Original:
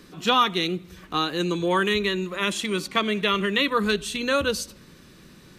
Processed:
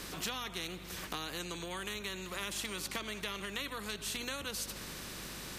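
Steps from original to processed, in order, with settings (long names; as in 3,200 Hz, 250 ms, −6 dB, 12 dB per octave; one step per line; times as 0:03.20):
downward compressor 6 to 1, threshold −34 dBFS, peak gain reduction 18 dB
mains hum 50 Hz, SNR 15 dB
every bin compressed towards the loudest bin 2 to 1
level −1.5 dB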